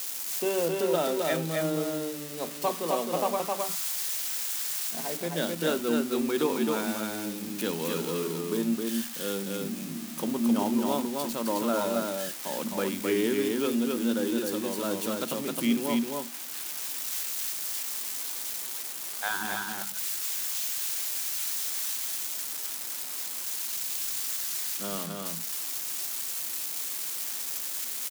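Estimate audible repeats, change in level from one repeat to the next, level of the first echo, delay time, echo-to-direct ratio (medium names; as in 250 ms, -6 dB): 1, no regular repeats, -3.0 dB, 263 ms, -3.0 dB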